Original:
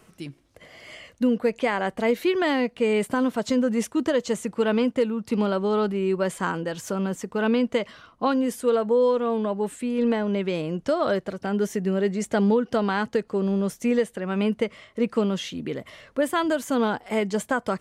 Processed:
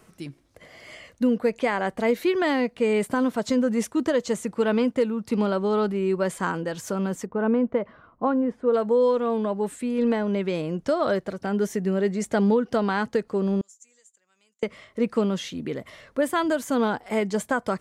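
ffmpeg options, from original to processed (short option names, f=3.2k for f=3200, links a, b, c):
-filter_complex "[0:a]asplit=3[a][b][c];[a]afade=t=out:st=7.25:d=0.02[d];[b]lowpass=1.3k,afade=t=in:st=7.25:d=0.02,afade=t=out:st=8.73:d=0.02[e];[c]afade=t=in:st=8.73:d=0.02[f];[d][e][f]amix=inputs=3:normalize=0,asettb=1/sr,asplit=3[g][h][i];[g]atrim=end=13.614[j];[h]atrim=start=13.61:end=14.63,asetpts=PTS-STARTPTS,afade=t=in:d=0.004:c=qsin,afade=t=out:st=1.016:d=0.004:c=qsin,bandpass=f=7.1k:t=q:w=10[k];[i]atrim=start=14.626[l];[j][k]acrossfade=d=0.004:c1=hsin:c2=qsin[m];[m][l]acrossfade=d=0.004:c1=qsin:c2=hsin,equalizer=f=2.9k:t=o:w=0.4:g=-3.5"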